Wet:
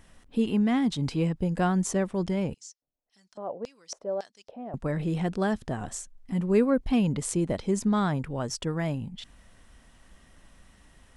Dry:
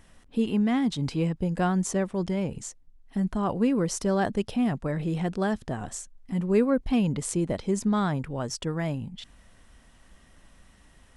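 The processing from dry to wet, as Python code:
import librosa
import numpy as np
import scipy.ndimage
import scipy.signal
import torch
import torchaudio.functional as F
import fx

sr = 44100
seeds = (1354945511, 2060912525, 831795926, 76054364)

y = fx.filter_lfo_bandpass(x, sr, shape='square', hz=1.8, low_hz=590.0, high_hz=5300.0, q=3.4, at=(2.54, 4.74))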